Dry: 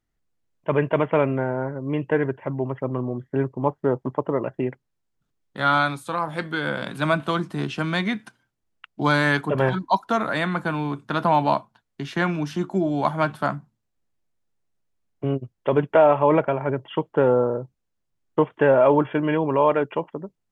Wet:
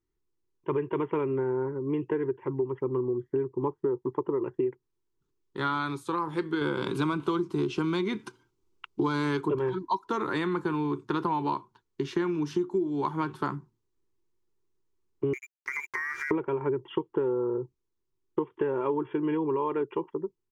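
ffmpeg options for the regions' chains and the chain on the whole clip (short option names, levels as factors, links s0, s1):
-filter_complex "[0:a]asettb=1/sr,asplit=3[s0][s1][s2];[s0]atrim=end=6.614[s3];[s1]atrim=start=6.61:end=9.59,asetpts=PTS-STARTPTS,afade=t=in:d=0.004:c=qsin,afade=t=out:st=2.976:d=0.004:c=qsin,bandreject=f=1800:w=5.9,acontrast=39[s4];[s2]atrim=start=9.586[s5];[s3][s4]acrossfade=d=0.004:c1=hsin:c2=qsin[s6];[s6][s5]acrossfade=d=0.004:c1=qsin:c2=hsin,asettb=1/sr,asplit=3[s7][s8][s9];[s7]atrim=end=15.334[s10];[s8]atrim=start=15.33:end=16.31,asetpts=PTS-STARTPTS,afade=t=in:d=0.004:c=qsin,afade=t=out:st=0.976:d=0.004:c=qsin,lowpass=f=2100:t=q:w=0.5098,lowpass=f=2100:t=q:w=0.6013,lowpass=f=2100:t=q:w=0.9,lowpass=f=2100:t=q:w=2.563,afreqshift=-2500,aeval=exprs='sgn(val(0))*max(abs(val(0))-0.0141,0)':c=same,acompressor=threshold=0.0708:ratio=12:attack=3.2:release=140:knee=1:detection=peak[s11];[s9]atrim=start=16.306[s12];[s10][s11]acrossfade=d=0.004:c1=hsin:c2=qsin[s13];[s13][s12]acrossfade=d=0.004:c1=qsin:c2=hsin,dynaudnorm=f=770:g=13:m=3.76,firequalizer=gain_entry='entry(100,0);entry(230,-5);entry(370,13);entry(630,-18);entry(930,3);entry(1500,-5);entry(6100,-1);entry(9700,-7)':delay=0.05:min_phase=1,acompressor=threshold=0.1:ratio=10,volume=0.596"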